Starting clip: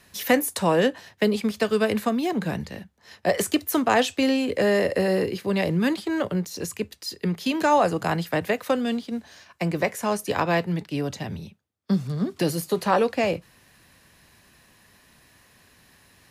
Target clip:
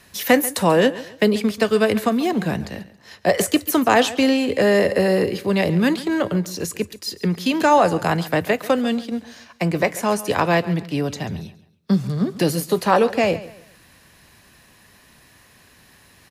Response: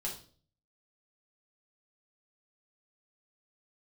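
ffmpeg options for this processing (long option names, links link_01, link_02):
-af "aecho=1:1:138|276|414:0.141|0.0452|0.0145,volume=4.5dB"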